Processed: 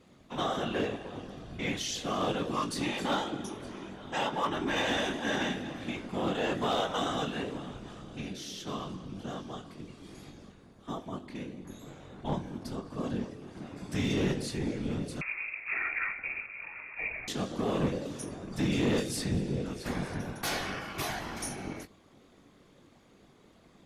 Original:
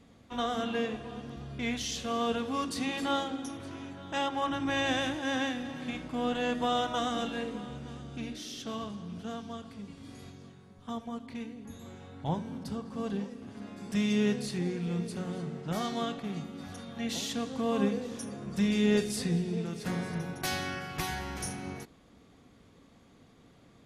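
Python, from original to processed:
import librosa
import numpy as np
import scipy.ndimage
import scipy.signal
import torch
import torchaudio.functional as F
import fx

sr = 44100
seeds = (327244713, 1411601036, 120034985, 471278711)

y = fx.low_shelf(x, sr, hz=79.0, db=-10.0)
y = fx.whisperise(y, sr, seeds[0])
y = np.clip(y, -10.0 ** (-23.5 / 20.0), 10.0 ** (-23.5 / 20.0))
y = fx.doubler(y, sr, ms=21.0, db=-9.5)
y = fx.freq_invert(y, sr, carrier_hz=2600, at=(15.21, 17.28))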